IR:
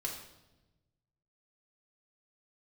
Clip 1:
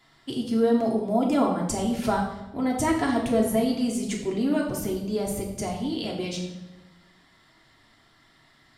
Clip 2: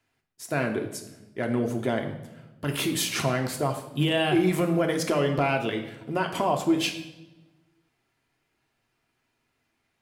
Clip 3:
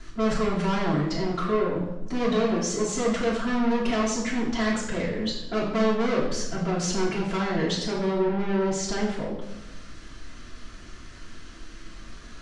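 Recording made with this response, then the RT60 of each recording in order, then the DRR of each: 1; 1.0 s, 1.1 s, 1.0 s; -2.5 dB, 3.0 dB, -8.5 dB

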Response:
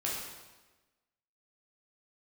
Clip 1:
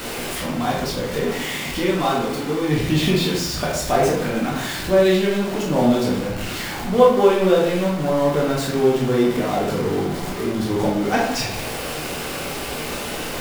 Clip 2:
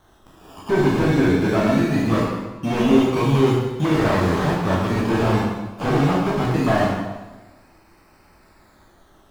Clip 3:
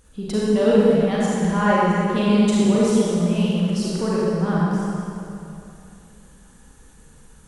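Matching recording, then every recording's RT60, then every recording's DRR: 2; 0.75 s, 1.2 s, 2.9 s; -4.5 dB, -5.5 dB, -7.0 dB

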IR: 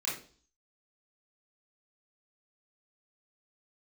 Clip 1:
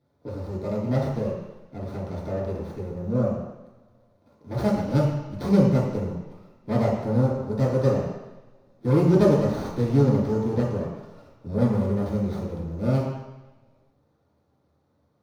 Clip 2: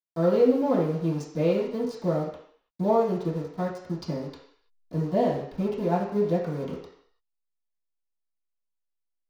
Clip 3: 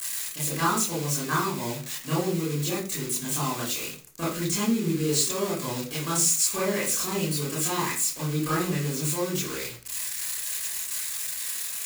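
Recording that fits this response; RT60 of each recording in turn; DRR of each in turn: 3; no single decay rate, no single decay rate, 0.45 s; -7.0 dB, -11.5 dB, -7.0 dB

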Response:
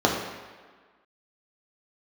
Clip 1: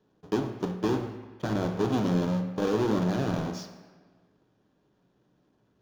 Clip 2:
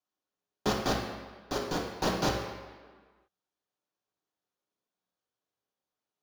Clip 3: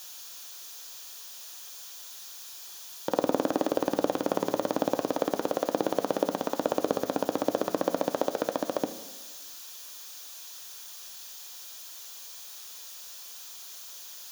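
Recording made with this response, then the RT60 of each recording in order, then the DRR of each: 2; 1.5 s, 1.5 s, 1.5 s; 4.0 dB, -2.0 dB, 9.0 dB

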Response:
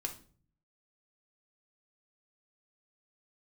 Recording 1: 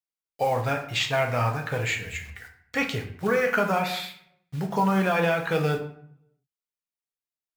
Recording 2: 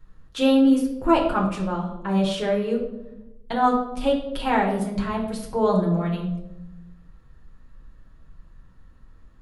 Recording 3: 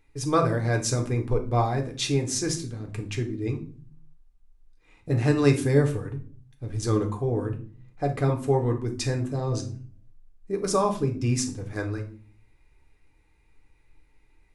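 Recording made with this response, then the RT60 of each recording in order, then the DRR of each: 3; 0.60 s, 0.90 s, 0.45 s; 2.0 dB, -2.5 dB, 3.5 dB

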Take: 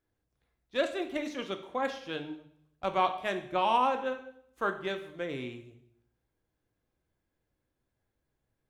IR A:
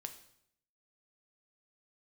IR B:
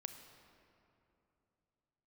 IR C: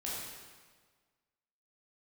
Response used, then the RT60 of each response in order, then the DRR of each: A; 0.70 s, 2.9 s, 1.5 s; 6.5 dB, 7.0 dB, -7.0 dB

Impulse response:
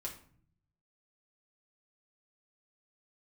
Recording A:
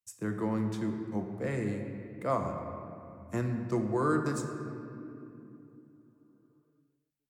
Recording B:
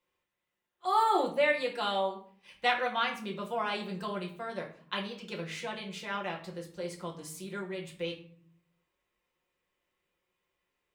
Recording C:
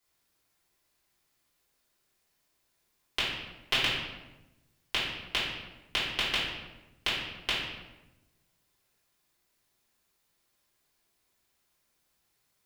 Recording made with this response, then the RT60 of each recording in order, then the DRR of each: B; 2.9 s, 0.50 s, 1.0 s; 3.5 dB, -2.0 dB, -11.0 dB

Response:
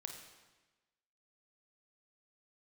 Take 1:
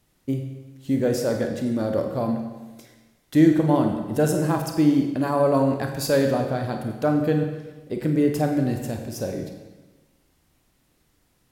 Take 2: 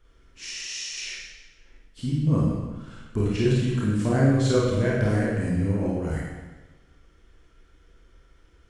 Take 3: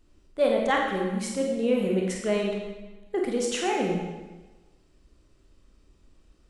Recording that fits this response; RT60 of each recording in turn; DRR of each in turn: 1; 1.2 s, 1.2 s, 1.2 s; 3.5 dB, -6.0 dB, -0.5 dB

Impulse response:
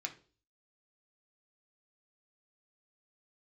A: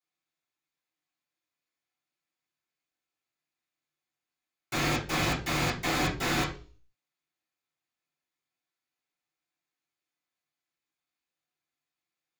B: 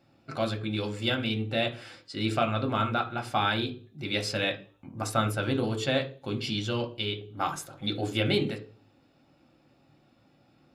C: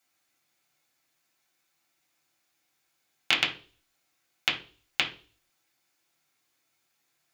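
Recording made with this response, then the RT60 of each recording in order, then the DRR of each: B; 0.40 s, 0.40 s, 0.40 s; -11.0 dB, 3.0 dB, -2.0 dB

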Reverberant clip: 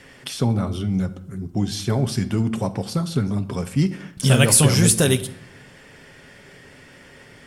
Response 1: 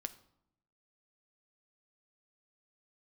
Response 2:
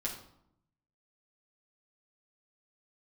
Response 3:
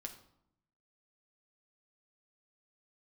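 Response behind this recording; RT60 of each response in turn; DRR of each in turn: 1; 0.75 s, 0.75 s, 0.75 s; 9.5 dB, -5.0 dB, 2.5 dB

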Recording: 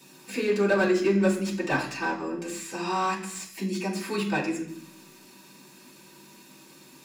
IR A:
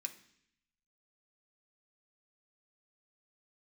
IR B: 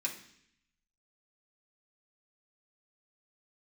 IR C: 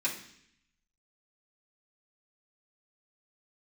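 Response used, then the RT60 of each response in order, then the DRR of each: C; 0.65 s, 0.65 s, 0.65 s; 3.0 dB, -4.0 dB, -9.0 dB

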